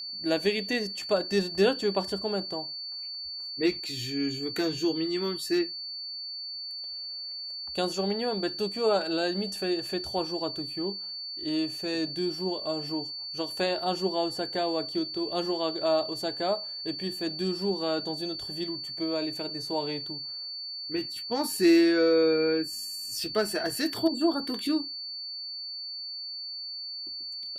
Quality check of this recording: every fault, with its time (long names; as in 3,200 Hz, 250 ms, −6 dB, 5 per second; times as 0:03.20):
whistle 4,500 Hz −35 dBFS